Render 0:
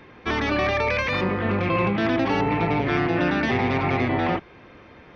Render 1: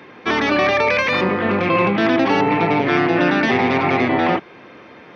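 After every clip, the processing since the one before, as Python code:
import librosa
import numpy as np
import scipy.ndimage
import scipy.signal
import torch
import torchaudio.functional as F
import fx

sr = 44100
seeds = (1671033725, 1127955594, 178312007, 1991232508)

y = scipy.signal.sosfilt(scipy.signal.butter(2, 180.0, 'highpass', fs=sr, output='sos'), x)
y = F.gain(torch.from_numpy(y), 6.5).numpy()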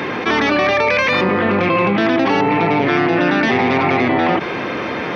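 y = fx.env_flatten(x, sr, amount_pct=70)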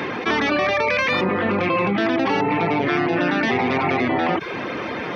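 y = fx.dereverb_blind(x, sr, rt60_s=0.52)
y = F.gain(torch.from_numpy(y), -3.5).numpy()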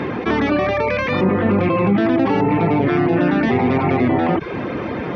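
y = fx.tilt_eq(x, sr, slope=-3.0)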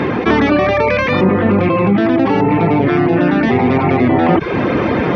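y = fx.rider(x, sr, range_db=5, speed_s=0.5)
y = F.gain(torch.from_numpy(y), 4.5).numpy()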